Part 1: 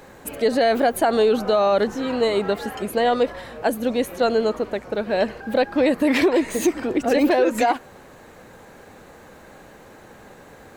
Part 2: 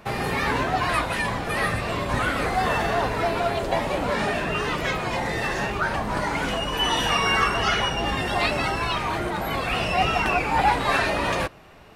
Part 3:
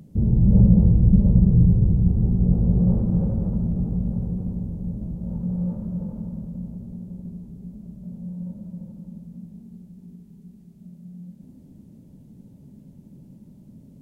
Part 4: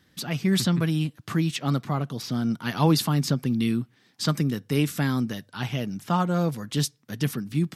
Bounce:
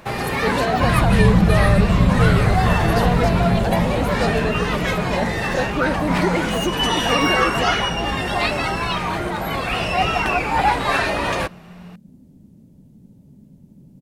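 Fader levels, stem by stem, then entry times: -5.0 dB, +2.5 dB, -0.5 dB, -8.0 dB; 0.00 s, 0.00 s, 0.65 s, 0.00 s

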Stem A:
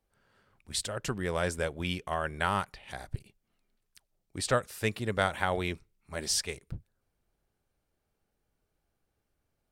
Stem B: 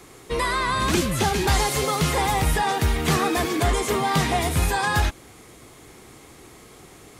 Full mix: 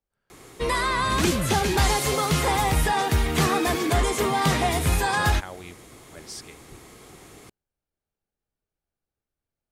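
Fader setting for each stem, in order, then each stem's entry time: -9.5 dB, -0.5 dB; 0.00 s, 0.30 s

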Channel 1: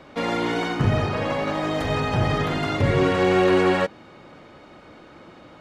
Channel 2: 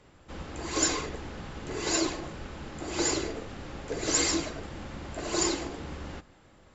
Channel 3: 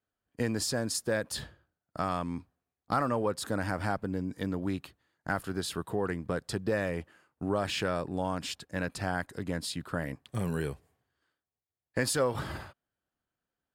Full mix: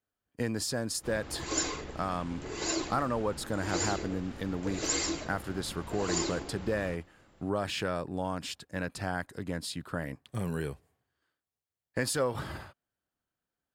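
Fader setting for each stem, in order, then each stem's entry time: mute, -4.5 dB, -1.5 dB; mute, 0.75 s, 0.00 s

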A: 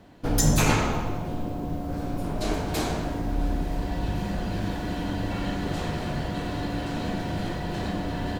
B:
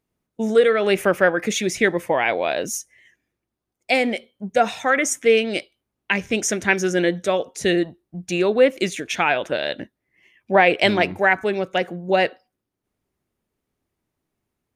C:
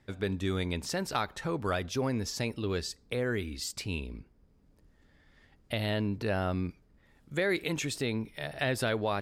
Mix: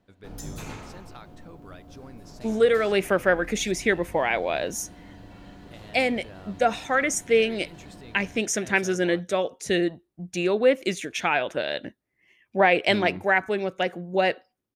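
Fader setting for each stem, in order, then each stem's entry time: -17.0 dB, -4.0 dB, -15.5 dB; 0.00 s, 2.05 s, 0.00 s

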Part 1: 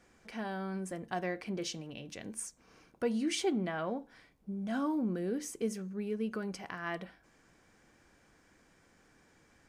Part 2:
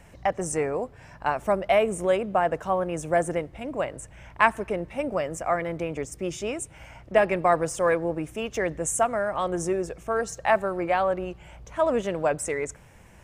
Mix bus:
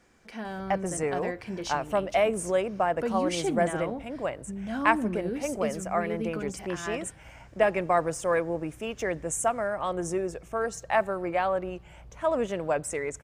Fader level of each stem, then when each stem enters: +2.0 dB, -3.0 dB; 0.00 s, 0.45 s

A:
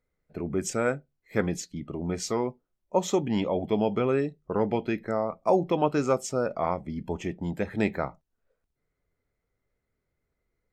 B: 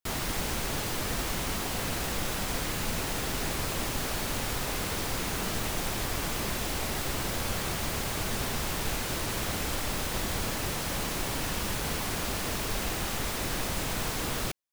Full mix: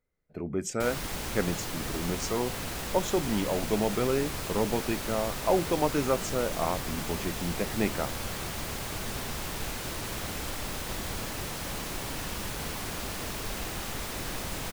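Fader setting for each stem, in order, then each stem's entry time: -2.5 dB, -3.5 dB; 0.00 s, 0.75 s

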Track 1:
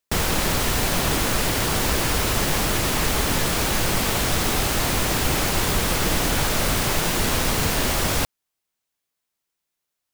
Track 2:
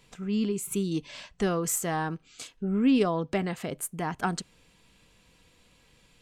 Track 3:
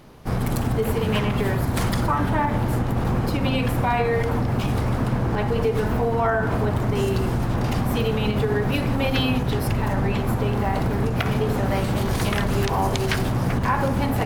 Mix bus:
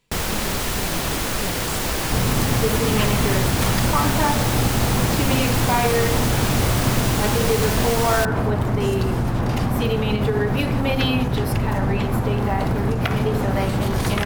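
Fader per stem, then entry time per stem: -2.0 dB, -7.5 dB, +1.5 dB; 0.00 s, 0.00 s, 1.85 s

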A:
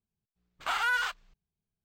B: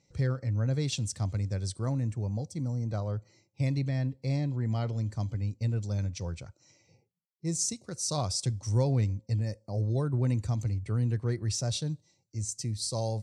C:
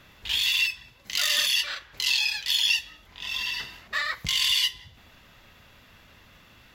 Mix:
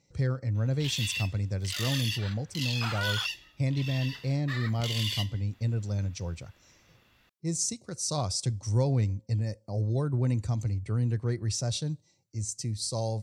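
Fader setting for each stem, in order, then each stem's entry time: -6.0 dB, +0.5 dB, -10.0 dB; 2.15 s, 0.00 s, 0.55 s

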